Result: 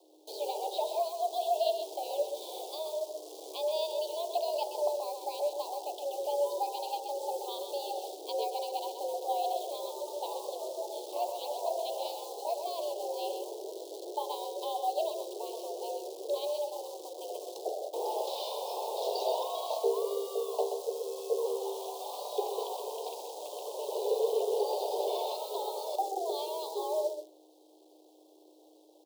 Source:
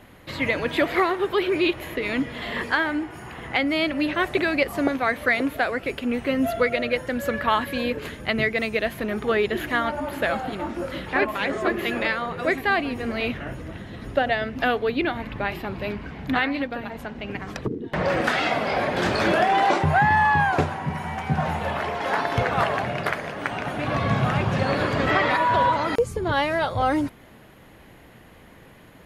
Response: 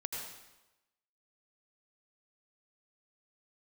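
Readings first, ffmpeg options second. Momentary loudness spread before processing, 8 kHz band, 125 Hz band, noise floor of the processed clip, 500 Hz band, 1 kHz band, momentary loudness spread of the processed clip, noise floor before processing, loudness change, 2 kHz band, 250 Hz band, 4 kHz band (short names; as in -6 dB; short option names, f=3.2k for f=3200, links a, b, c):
10 LU, +1.0 dB, under -40 dB, -59 dBFS, -6.0 dB, -11.0 dB, 8 LU, -49 dBFS, -11.0 dB, under -35 dB, -23.5 dB, -9.0 dB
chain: -af "lowpass=4.6k,bandreject=f=60:t=h:w=6,bandreject=f=120:t=h:w=6,bandreject=f=180:t=h:w=6,bandreject=f=240:t=h:w=6,bandreject=f=300:t=h:w=6,bandreject=f=360:t=h:w=6,bandreject=f=420:t=h:w=6,bandreject=f=480:t=h:w=6,bandreject=f=540:t=h:w=6,bandreject=f=600:t=h:w=6,acrusher=bits=7:dc=4:mix=0:aa=0.000001,afreqshift=310,asuperstop=centerf=1700:order=8:qfactor=0.6,aecho=1:1:128:0.422,volume=-6dB"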